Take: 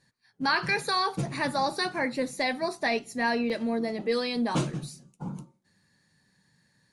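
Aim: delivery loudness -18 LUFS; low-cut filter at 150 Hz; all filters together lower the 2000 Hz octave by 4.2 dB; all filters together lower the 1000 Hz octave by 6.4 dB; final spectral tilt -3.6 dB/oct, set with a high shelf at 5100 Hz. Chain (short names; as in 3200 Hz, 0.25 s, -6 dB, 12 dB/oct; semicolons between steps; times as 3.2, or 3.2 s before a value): HPF 150 Hz; bell 1000 Hz -8 dB; bell 2000 Hz -3.5 dB; high shelf 5100 Hz +6.5 dB; gain +12 dB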